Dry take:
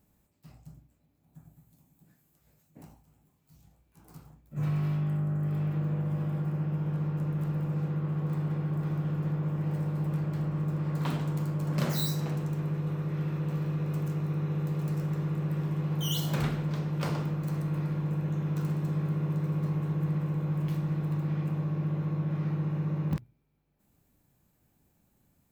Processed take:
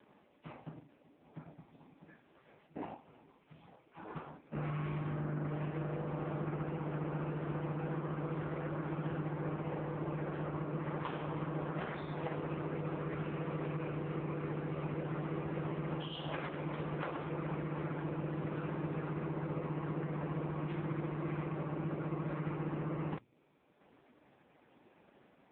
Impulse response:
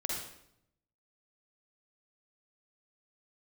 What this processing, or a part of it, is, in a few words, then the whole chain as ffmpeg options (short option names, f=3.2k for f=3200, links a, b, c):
voicemail: -filter_complex "[0:a]asplit=3[a][b][c];[a]afade=t=out:st=4.61:d=0.02[d];[b]equalizer=f=67:t=o:w=0.76:g=2.5,afade=t=in:st=4.61:d=0.02,afade=t=out:st=5.91:d=0.02[e];[c]afade=t=in:st=5.91:d=0.02[f];[d][e][f]amix=inputs=3:normalize=0,highpass=360,lowpass=2.9k,acompressor=threshold=-51dB:ratio=8,volume=17.5dB" -ar 8000 -c:a libopencore_amrnb -b:a 4750